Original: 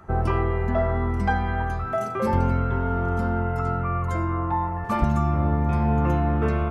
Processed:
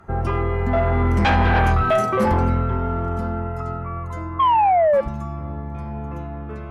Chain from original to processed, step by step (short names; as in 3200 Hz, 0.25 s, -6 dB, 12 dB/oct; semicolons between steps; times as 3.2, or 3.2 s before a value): Doppler pass-by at 1.61, 8 m/s, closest 2.7 m; painted sound fall, 4.39–5.01, 530–1100 Hz -27 dBFS; sine folder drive 8 dB, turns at -14 dBFS; gain +1.5 dB